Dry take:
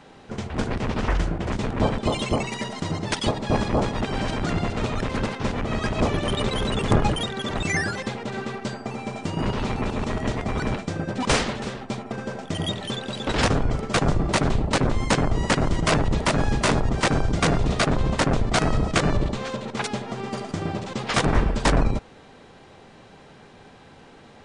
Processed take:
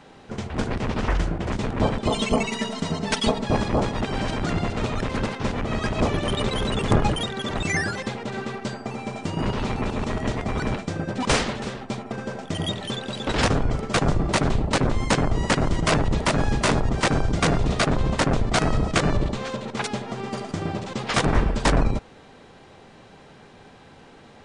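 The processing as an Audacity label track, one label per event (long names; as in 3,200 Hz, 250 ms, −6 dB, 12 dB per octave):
2.100000	3.440000	comb filter 4.5 ms, depth 76%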